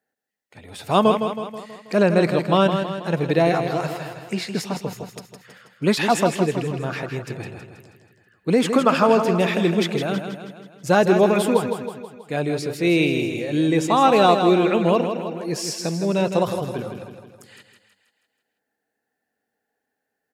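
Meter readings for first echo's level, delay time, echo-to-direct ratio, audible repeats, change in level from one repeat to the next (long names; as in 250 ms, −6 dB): −7.5 dB, 161 ms, −6.0 dB, 5, −5.5 dB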